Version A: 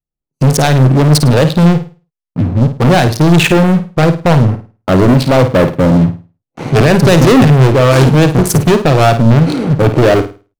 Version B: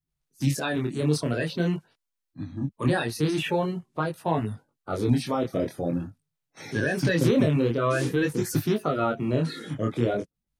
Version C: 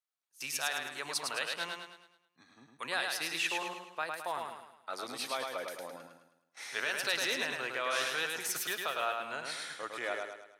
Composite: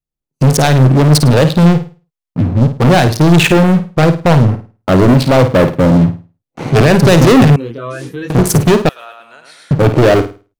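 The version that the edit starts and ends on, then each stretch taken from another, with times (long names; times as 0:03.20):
A
0:07.56–0:08.30: punch in from B
0:08.89–0:09.71: punch in from C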